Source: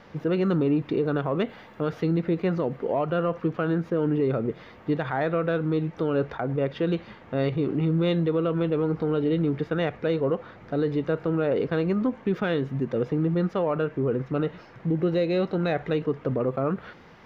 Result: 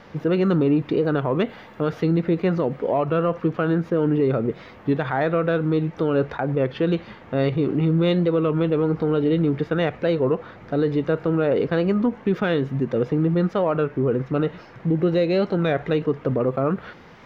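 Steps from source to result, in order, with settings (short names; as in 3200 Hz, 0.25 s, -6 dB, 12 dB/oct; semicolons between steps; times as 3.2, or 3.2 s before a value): record warp 33 1/3 rpm, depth 100 cents; gain +4 dB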